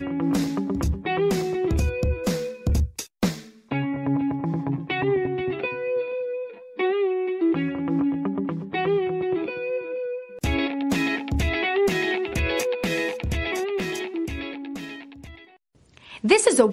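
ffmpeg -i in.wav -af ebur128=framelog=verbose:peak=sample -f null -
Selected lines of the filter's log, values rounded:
Integrated loudness:
  I:         -25.1 LUFS
  Threshold: -35.5 LUFS
Loudness range:
  LRA:         2.7 LU
  Threshold: -45.8 LUFS
  LRA low:   -27.1 LUFS
  LRA high:  -24.4 LUFS
Sample peak:
  Peak:       -3.2 dBFS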